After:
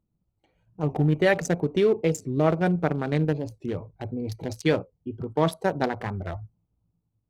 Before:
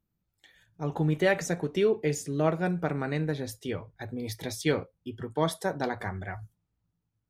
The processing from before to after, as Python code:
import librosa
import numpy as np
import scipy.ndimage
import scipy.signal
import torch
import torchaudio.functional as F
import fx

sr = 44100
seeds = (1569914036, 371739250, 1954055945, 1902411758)

p1 = fx.wiener(x, sr, points=25)
p2 = fx.level_steps(p1, sr, step_db=10)
p3 = p1 + F.gain(torch.from_numpy(p2), 2.5).numpy()
y = fx.record_warp(p3, sr, rpm=45.0, depth_cents=160.0)